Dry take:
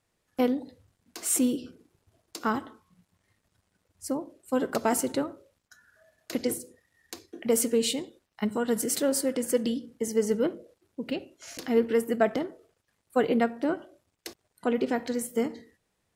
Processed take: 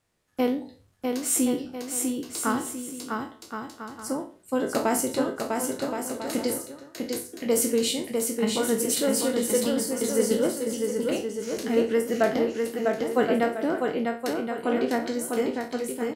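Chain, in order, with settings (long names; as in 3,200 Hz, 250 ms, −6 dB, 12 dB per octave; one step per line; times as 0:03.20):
peak hold with a decay on every bin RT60 0.34 s
bouncing-ball delay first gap 650 ms, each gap 0.65×, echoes 5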